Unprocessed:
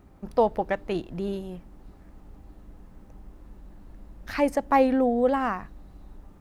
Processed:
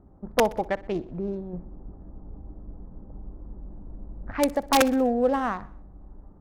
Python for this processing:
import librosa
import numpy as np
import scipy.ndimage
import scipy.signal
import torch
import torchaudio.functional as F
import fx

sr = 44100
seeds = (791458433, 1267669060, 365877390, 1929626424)

y = fx.wiener(x, sr, points=15)
y = (np.mod(10.0 ** (11.0 / 20.0) * y + 1.0, 2.0) - 1.0) / 10.0 ** (11.0 / 20.0)
y = fx.env_lowpass(y, sr, base_hz=1000.0, full_db=-21.0)
y = fx.tilt_shelf(y, sr, db=6.0, hz=1400.0, at=(1.53, 4.32))
y = fx.echo_feedback(y, sr, ms=62, feedback_pct=53, wet_db=-20)